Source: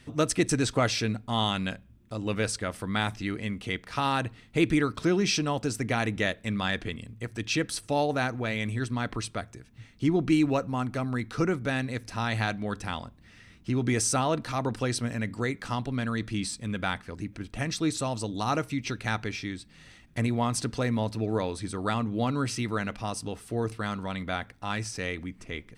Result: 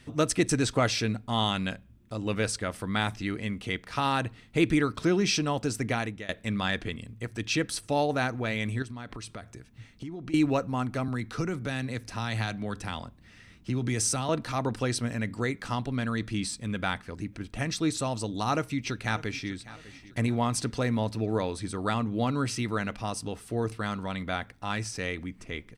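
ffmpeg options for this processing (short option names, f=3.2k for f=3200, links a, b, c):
-filter_complex "[0:a]asettb=1/sr,asplit=3[a][b][c];[a]atrim=end=8.824[d];[b]atrim=start=8.82:end=10.34,asetpts=PTS-STARTPTS,afade=t=in:d=0.004:c=qsin,afade=t=out:st=1.516:d=0.004:c=qsin,acompressor=threshold=-36dB:ratio=6:attack=3.2:release=140:knee=1:detection=peak[e];[c]atrim=start=10.336[f];[d][e]acrossfade=d=0.004:c1=hsin:c2=qsin[g];[g][f]acrossfade=d=0.004:c1=qsin:c2=hsin,asettb=1/sr,asplit=3[h][i][j];[h]atrim=end=11.084[k];[i]atrim=start=11.08:end=14.29,asetpts=PTS-STARTPTS,afade=t=in:d=0.004:c=qsin,afade=t=out:st=3.206:d=0.004:c=qsin,acrossover=split=160|3000[l][m][n];[m]acompressor=threshold=-30dB:ratio=3:attack=3.2:release=140:knee=2.83:detection=peak[o];[l][o][n]amix=inputs=3:normalize=0[p];[j]atrim=start=14.286[q];[k][p]acrossfade=d=0.004:c1=hsin:c2=qsin[r];[r][q]acrossfade=d=0.004:c1=qsin:c2=hsin,asplit=2[s][t];[t]afade=t=in:st=18.48:d=0.01,afade=t=out:st=19.51:d=0.01,aecho=0:1:600|1200|1800:0.133352|0.0533409|0.0213363[u];[s][u]amix=inputs=2:normalize=0,asplit=2[v][w];[v]atrim=end=6.29,asetpts=PTS-STARTPTS,afade=t=out:st=5.88:d=0.41:silence=0.0891251[x];[w]atrim=start=6.29,asetpts=PTS-STARTPTS,afade=t=in:d=0.004:c=hsin:silence=0.0891251[y];[x][y]concat=n=2:v=0:a=1"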